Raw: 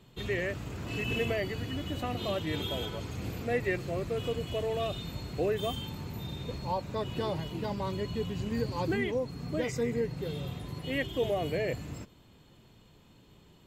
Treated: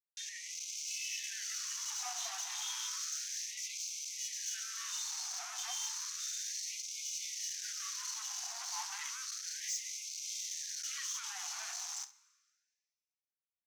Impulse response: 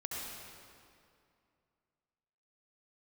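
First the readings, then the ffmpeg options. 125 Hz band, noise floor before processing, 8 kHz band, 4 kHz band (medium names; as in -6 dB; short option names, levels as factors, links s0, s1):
under -40 dB, -59 dBFS, +18.0 dB, +0.5 dB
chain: -filter_complex "[0:a]highpass=140,acrusher=bits=6:mix=0:aa=0.000001,highshelf=f=3800:g=5,alimiter=level_in=1.33:limit=0.0631:level=0:latency=1,volume=0.75,dynaudnorm=f=290:g=5:m=5.01,equalizer=f=2800:t=o:w=1.6:g=-4.5,asoftclip=type=hard:threshold=0.0224,lowpass=f=6100:t=q:w=6.6,asoftclip=type=tanh:threshold=0.0473,aecho=1:1:30|67:0.224|0.158,asplit=2[s0][s1];[1:a]atrim=start_sample=2205[s2];[s1][s2]afir=irnorm=-1:irlink=0,volume=0.0944[s3];[s0][s3]amix=inputs=2:normalize=0,afftfilt=real='re*gte(b*sr/1024,670*pow(2100/670,0.5+0.5*sin(2*PI*0.32*pts/sr)))':imag='im*gte(b*sr/1024,670*pow(2100/670,0.5+0.5*sin(2*PI*0.32*pts/sr)))':win_size=1024:overlap=0.75,volume=0.531"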